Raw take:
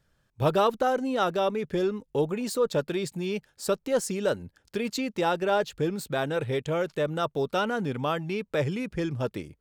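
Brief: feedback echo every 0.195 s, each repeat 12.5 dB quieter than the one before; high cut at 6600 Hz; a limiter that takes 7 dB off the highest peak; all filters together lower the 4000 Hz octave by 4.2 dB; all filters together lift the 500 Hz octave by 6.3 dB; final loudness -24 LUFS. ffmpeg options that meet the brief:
-af "lowpass=6.6k,equalizer=f=500:t=o:g=7.5,equalizer=f=4k:t=o:g=-5,alimiter=limit=-15dB:level=0:latency=1,aecho=1:1:195|390|585:0.237|0.0569|0.0137,volume=1.5dB"

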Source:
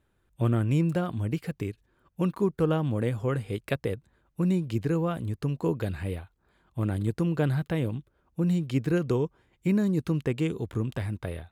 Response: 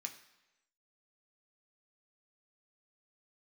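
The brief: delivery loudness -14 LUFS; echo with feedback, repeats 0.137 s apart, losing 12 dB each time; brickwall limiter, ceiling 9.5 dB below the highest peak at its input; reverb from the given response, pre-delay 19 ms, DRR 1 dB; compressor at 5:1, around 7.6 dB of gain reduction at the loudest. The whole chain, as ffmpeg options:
-filter_complex "[0:a]acompressor=threshold=-29dB:ratio=5,alimiter=level_in=4.5dB:limit=-24dB:level=0:latency=1,volume=-4.5dB,aecho=1:1:137|274|411:0.251|0.0628|0.0157,asplit=2[a][b];[1:a]atrim=start_sample=2205,adelay=19[c];[b][c]afir=irnorm=-1:irlink=0,volume=2dB[d];[a][d]amix=inputs=2:normalize=0,volume=22dB"

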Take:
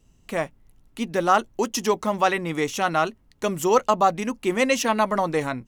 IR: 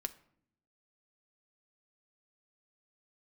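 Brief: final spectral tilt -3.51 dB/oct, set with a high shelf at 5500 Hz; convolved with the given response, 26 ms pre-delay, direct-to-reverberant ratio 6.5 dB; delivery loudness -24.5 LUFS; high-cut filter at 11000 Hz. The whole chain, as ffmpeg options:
-filter_complex "[0:a]lowpass=11k,highshelf=f=5.5k:g=7,asplit=2[a][b];[1:a]atrim=start_sample=2205,adelay=26[c];[b][c]afir=irnorm=-1:irlink=0,volume=-5.5dB[d];[a][d]amix=inputs=2:normalize=0,volume=-2.5dB"

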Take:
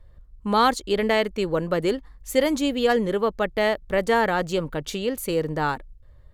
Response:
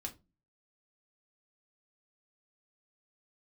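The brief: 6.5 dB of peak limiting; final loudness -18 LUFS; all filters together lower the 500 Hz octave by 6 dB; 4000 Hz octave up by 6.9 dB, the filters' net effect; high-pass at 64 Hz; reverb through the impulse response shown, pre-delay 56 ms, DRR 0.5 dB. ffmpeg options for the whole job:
-filter_complex "[0:a]highpass=64,equalizer=f=500:t=o:g=-7.5,equalizer=f=4k:t=o:g=9,alimiter=limit=-13.5dB:level=0:latency=1,asplit=2[a][b];[1:a]atrim=start_sample=2205,adelay=56[c];[b][c]afir=irnorm=-1:irlink=0,volume=1.5dB[d];[a][d]amix=inputs=2:normalize=0,volume=5.5dB"

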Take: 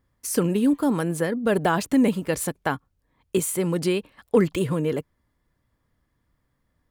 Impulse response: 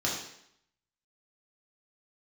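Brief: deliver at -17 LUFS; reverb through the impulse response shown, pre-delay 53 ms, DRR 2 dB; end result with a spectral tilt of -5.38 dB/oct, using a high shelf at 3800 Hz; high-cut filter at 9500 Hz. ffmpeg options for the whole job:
-filter_complex "[0:a]lowpass=9.5k,highshelf=f=3.8k:g=4,asplit=2[a][b];[1:a]atrim=start_sample=2205,adelay=53[c];[b][c]afir=irnorm=-1:irlink=0,volume=-10.5dB[d];[a][d]amix=inputs=2:normalize=0,volume=4.5dB"

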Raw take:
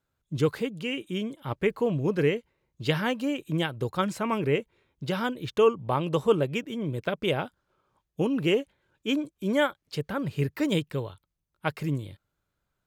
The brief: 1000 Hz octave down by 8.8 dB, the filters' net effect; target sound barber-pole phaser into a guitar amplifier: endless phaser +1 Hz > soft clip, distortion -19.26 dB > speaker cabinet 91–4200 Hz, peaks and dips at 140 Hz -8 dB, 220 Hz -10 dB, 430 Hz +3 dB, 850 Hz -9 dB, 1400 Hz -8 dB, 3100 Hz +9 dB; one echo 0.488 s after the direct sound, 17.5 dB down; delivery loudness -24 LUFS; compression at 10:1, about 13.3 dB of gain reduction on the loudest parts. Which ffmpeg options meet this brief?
-filter_complex "[0:a]equalizer=f=1k:t=o:g=-4.5,acompressor=threshold=-31dB:ratio=10,aecho=1:1:488:0.133,asplit=2[a][b];[b]afreqshift=1[c];[a][c]amix=inputs=2:normalize=1,asoftclip=threshold=-29.5dB,highpass=91,equalizer=f=140:t=q:w=4:g=-8,equalizer=f=220:t=q:w=4:g=-10,equalizer=f=430:t=q:w=4:g=3,equalizer=f=850:t=q:w=4:g=-9,equalizer=f=1.4k:t=q:w=4:g=-8,equalizer=f=3.1k:t=q:w=4:g=9,lowpass=f=4.2k:w=0.5412,lowpass=f=4.2k:w=1.3066,volume=18dB"

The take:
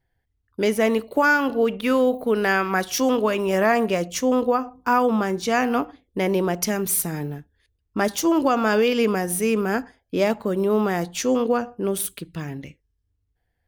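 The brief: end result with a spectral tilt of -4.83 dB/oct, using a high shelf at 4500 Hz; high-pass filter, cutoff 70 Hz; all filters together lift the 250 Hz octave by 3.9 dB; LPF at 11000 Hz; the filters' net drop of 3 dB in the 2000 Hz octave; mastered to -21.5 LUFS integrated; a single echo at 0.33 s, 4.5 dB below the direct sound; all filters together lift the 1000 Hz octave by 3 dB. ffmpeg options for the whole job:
-af "highpass=70,lowpass=11k,equalizer=f=250:t=o:g=4.5,equalizer=f=1k:t=o:g=5.5,equalizer=f=2k:t=o:g=-8.5,highshelf=f=4.5k:g=4.5,aecho=1:1:330:0.596,volume=-3dB"

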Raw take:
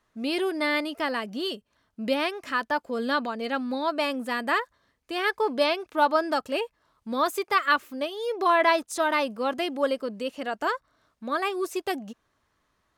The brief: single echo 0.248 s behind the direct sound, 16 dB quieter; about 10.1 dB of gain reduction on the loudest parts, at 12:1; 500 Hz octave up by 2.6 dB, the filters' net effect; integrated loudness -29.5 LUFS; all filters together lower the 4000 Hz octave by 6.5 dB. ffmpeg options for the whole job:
-af "equalizer=f=500:t=o:g=3.5,equalizer=f=4k:t=o:g=-9,acompressor=threshold=-26dB:ratio=12,aecho=1:1:248:0.158,volume=2dB"

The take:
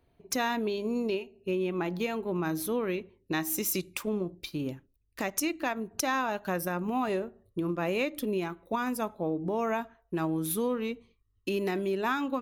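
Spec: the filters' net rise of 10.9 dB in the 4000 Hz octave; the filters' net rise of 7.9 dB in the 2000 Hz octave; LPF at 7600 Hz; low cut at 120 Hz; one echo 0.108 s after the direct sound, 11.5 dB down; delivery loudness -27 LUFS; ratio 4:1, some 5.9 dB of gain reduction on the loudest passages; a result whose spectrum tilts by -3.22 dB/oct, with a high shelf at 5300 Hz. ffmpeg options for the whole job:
-af "highpass=120,lowpass=7.6k,equalizer=f=2k:t=o:g=6.5,equalizer=f=4k:t=o:g=9,highshelf=f=5.3k:g=7.5,acompressor=threshold=-29dB:ratio=4,aecho=1:1:108:0.266,volume=6dB"

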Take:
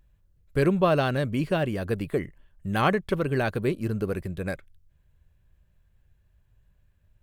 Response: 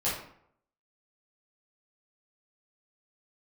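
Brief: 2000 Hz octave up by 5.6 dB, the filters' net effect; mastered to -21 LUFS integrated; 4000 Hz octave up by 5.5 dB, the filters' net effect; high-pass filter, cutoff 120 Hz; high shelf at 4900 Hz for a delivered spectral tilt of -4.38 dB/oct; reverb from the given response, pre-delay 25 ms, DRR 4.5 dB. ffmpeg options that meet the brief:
-filter_complex "[0:a]highpass=120,equalizer=f=2k:t=o:g=7,equalizer=f=4k:t=o:g=5.5,highshelf=f=4.9k:g=-3,asplit=2[a][b];[1:a]atrim=start_sample=2205,adelay=25[c];[b][c]afir=irnorm=-1:irlink=0,volume=-13dB[d];[a][d]amix=inputs=2:normalize=0,volume=3.5dB"

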